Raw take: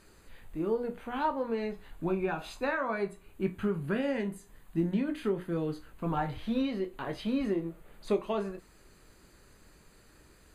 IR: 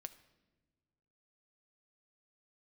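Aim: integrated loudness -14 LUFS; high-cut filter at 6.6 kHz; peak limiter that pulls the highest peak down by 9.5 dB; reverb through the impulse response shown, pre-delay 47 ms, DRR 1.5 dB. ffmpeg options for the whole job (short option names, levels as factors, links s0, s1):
-filter_complex "[0:a]lowpass=6600,alimiter=level_in=1.41:limit=0.0631:level=0:latency=1,volume=0.708,asplit=2[s0][s1];[1:a]atrim=start_sample=2205,adelay=47[s2];[s1][s2]afir=irnorm=-1:irlink=0,volume=1.5[s3];[s0][s3]amix=inputs=2:normalize=0,volume=11.2"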